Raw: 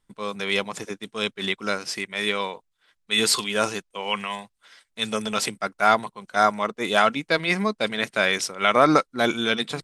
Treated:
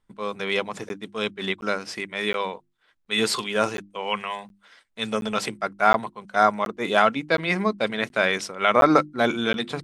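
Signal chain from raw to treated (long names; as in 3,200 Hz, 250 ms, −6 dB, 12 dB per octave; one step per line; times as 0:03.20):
high-shelf EQ 3,500 Hz −10 dB
mains-hum notches 50/100/150/200/250/300/350 Hz
regular buffer underruns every 0.72 s, samples 512, zero, from 0:00.89
level +1.5 dB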